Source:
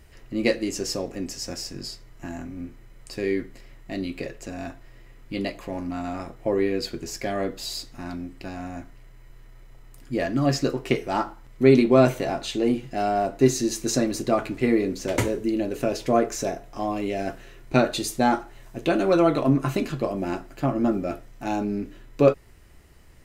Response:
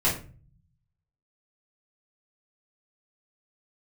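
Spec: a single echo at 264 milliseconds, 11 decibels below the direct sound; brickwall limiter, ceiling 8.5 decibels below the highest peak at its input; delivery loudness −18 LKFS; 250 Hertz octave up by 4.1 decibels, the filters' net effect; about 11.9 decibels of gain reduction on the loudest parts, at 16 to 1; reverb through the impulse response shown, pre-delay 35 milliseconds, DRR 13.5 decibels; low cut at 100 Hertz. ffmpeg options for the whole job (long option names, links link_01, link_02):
-filter_complex "[0:a]highpass=100,equalizer=frequency=250:width_type=o:gain=5,acompressor=threshold=-20dB:ratio=16,alimiter=limit=-17dB:level=0:latency=1,aecho=1:1:264:0.282,asplit=2[link_01][link_02];[1:a]atrim=start_sample=2205,adelay=35[link_03];[link_02][link_03]afir=irnorm=-1:irlink=0,volume=-26dB[link_04];[link_01][link_04]amix=inputs=2:normalize=0,volume=10.5dB"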